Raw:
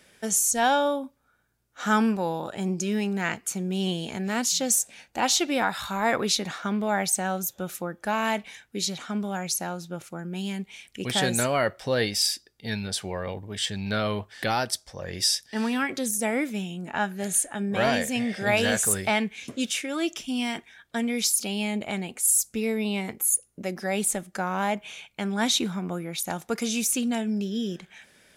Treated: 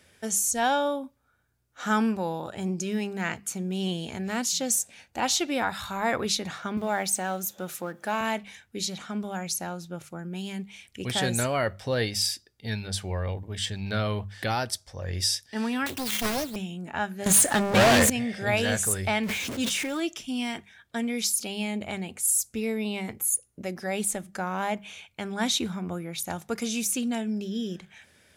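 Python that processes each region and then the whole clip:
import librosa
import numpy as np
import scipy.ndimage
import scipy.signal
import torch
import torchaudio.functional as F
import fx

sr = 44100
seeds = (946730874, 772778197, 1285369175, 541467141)

y = fx.chain(x, sr, fx.law_mismatch(coded='mu'),
    fx.highpass(hz=200.0, slope=12), at=(6.77, 8.21))
y = fx.chain(y, sr, fx.sample_sort(block=16),
    fx.high_shelf(hz=11000.0, db=11.0),
    fx.doppler_dist(depth_ms=0.93), at=(15.86, 16.56))
y = fx.chain(y, sr, fx.leveller(passes=5),
    fx.low_shelf(hz=130.0, db=-7.5), at=(17.26, 18.1))
y = fx.chain(y, sr, fx.zero_step(step_db=-34.5),
    fx.peak_eq(hz=67.0, db=-3.5, octaves=2.1),
    fx.sustainer(db_per_s=22.0), at=(19.23, 20.0))
y = fx.peak_eq(y, sr, hz=89.0, db=13.5, octaves=0.61)
y = fx.hum_notches(y, sr, base_hz=50, count=4)
y = y * librosa.db_to_amplitude(-2.5)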